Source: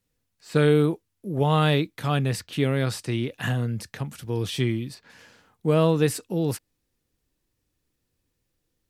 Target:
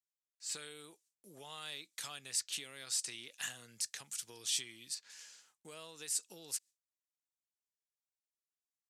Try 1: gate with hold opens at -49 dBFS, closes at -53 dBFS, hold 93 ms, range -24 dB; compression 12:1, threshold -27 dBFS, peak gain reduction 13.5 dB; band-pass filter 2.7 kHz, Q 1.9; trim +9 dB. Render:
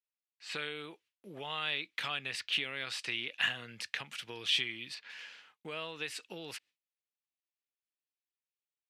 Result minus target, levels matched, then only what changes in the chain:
8 kHz band -16.0 dB
change: band-pass filter 7.3 kHz, Q 1.9

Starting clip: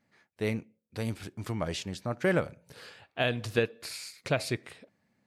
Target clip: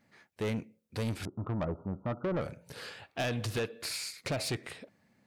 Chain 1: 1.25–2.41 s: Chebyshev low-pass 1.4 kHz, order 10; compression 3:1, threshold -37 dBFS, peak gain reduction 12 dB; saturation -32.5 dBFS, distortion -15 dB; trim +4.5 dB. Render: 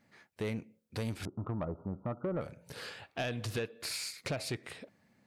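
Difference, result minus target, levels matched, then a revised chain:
compression: peak gain reduction +6.5 dB
1.25–2.41 s: Chebyshev low-pass 1.4 kHz, order 10; compression 3:1, threshold -27.5 dBFS, peak gain reduction 6 dB; saturation -32.5 dBFS, distortion -9 dB; trim +4.5 dB

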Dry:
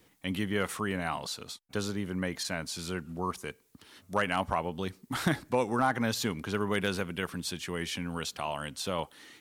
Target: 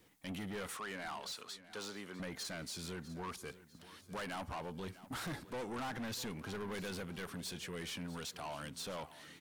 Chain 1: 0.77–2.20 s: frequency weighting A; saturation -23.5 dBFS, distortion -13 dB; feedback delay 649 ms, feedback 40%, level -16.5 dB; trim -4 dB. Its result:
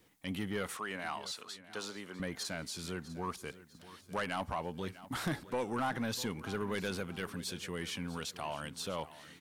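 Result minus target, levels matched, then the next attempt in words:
saturation: distortion -8 dB
0.77–2.20 s: frequency weighting A; saturation -34.5 dBFS, distortion -5 dB; feedback delay 649 ms, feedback 40%, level -16.5 dB; trim -4 dB

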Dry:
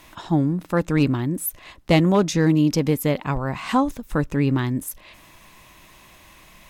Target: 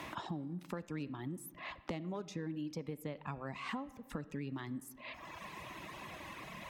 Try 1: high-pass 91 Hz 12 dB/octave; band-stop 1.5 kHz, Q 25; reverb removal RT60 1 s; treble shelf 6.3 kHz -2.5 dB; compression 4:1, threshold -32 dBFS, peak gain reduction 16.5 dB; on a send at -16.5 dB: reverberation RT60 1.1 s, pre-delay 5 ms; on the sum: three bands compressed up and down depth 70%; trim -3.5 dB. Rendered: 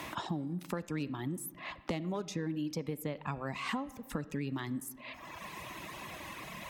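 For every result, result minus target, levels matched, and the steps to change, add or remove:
compression: peak gain reduction -4.5 dB; 8 kHz band +3.5 dB
change: compression 4:1, threshold -38.5 dBFS, peak gain reduction 21.5 dB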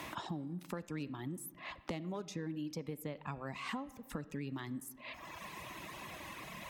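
8 kHz band +3.5 dB
change: treble shelf 6.3 kHz -10.5 dB

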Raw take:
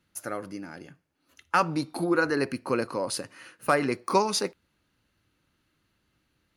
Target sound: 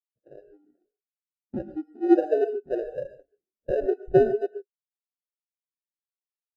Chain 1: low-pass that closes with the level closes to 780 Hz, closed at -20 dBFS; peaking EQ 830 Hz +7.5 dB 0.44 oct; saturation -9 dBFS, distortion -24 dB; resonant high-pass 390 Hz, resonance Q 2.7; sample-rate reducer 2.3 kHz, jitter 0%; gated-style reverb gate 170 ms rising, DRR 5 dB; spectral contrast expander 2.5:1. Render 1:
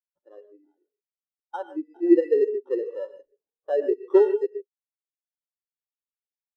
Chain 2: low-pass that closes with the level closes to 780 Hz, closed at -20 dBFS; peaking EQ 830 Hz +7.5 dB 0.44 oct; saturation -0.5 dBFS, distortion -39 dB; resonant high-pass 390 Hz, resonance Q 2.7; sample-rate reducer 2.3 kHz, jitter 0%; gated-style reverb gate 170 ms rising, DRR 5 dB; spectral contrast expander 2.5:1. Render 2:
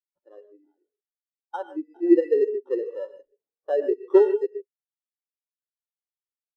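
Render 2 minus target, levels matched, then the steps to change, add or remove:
sample-rate reducer: distortion -13 dB
change: sample-rate reducer 1.1 kHz, jitter 0%

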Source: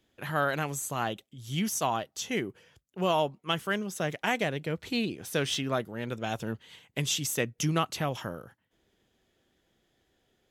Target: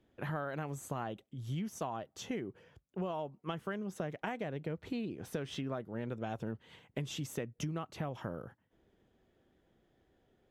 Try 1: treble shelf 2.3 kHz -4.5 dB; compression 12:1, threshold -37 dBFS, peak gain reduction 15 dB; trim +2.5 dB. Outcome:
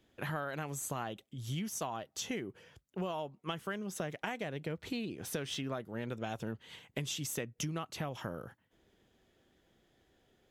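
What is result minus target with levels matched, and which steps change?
4 kHz band +5.0 dB
change: treble shelf 2.3 kHz -16.5 dB

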